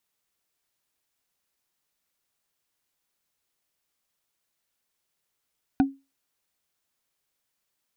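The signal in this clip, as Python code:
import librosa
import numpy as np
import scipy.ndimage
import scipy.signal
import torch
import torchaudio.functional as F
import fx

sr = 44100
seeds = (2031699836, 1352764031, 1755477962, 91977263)

y = fx.strike_wood(sr, length_s=0.45, level_db=-13.0, body='bar', hz=273.0, decay_s=0.25, tilt_db=7, modes=5)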